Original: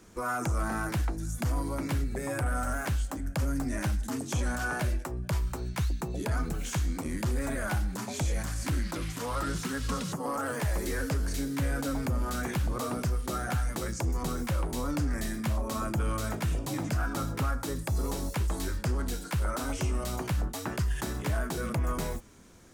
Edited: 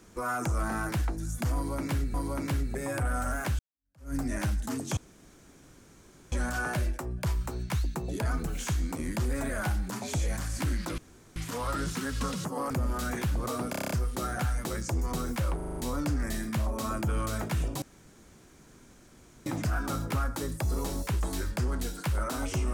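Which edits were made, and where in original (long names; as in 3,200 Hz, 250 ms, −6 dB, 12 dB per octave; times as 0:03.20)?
0:01.55–0:02.14: repeat, 2 plays
0:03.00–0:03.55: fade in exponential
0:04.38: splice in room tone 1.35 s
0:09.04: splice in room tone 0.38 s
0:10.38–0:12.02: remove
0:13.02: stutter 0.03 s, 8 plays
0:14.67: stutter 0.04 s, 6 plays
0:16.73: splice in room tone 1.64 s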